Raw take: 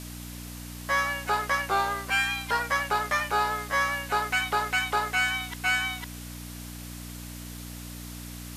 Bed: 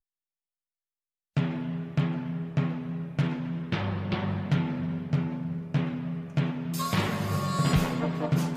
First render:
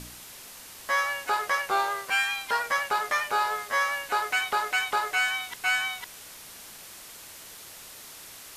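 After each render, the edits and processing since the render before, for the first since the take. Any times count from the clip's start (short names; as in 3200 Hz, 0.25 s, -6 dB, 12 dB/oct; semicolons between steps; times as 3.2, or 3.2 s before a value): de-hum 60 Hz, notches 12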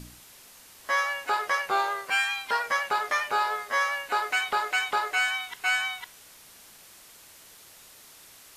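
noise print and reduce 6 dB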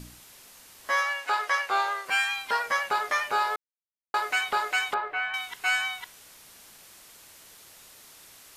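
1.02–2.06 weighting filter A; 3.56–4.14 mute; 4.94–5.34 air absorption 490 m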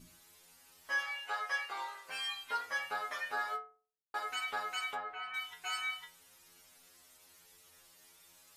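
metallic resonator 85 Hz, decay 0.46 s, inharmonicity 0.002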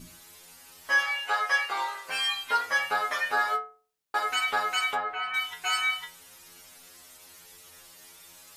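gain +10.5 dB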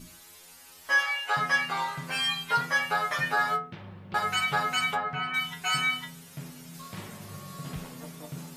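add bed -14.5 dB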